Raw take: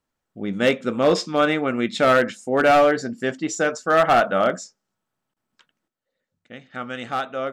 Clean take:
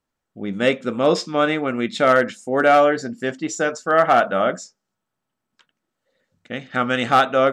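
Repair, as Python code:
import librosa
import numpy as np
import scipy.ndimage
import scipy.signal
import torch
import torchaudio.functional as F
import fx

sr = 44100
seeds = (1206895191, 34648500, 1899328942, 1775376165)

y = fx.fix_declip(x, sr, threshold_db=-10.5)
y = fx.fix_interpolate(y, sr, at_s=(5.34,), length_ms=23.0)
y = fx.fix_level(y, sr, at_s=5.88, step_db=10.5)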